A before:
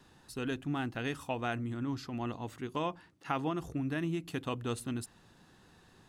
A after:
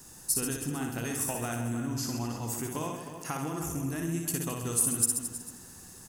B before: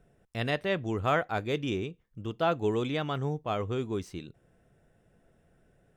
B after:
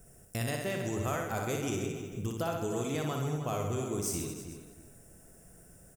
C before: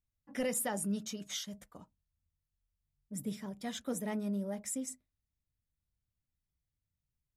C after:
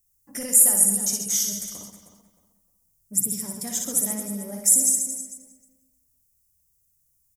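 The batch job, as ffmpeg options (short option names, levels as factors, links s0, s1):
-filter_complex "[0:a]lowshelf=f=170:g=4,acompressor=threshold=0.0178:ratio=6,asplit=2[s0][s1];[s1]aecho=0:1:60|132|218.4|322.1|446.5:0.631|0.398|0.251|0.158|0.1[s2];[s0][s2]amix=inputs=2:normalize=0,aexciter=amount=11.6:drive=4.4:freq=5500,asplit=2[s3][s4];[s4]adelay=310,lowpass=f=2700:p=1,volume=0.316,asplit=2[s5][s6];[s6]adelay=310,lowpass=f=2700:p=1,volume=0.27,asplit=2[s7][s8];[s8]adelay=310,lowpass=f=2700:p=1,volume=0.27[s9];[s5][s7][s9]amix=inputs=3:normalize=0[s10];[s3][s10]amix=inputs=2:normalize=0,volume=1.33"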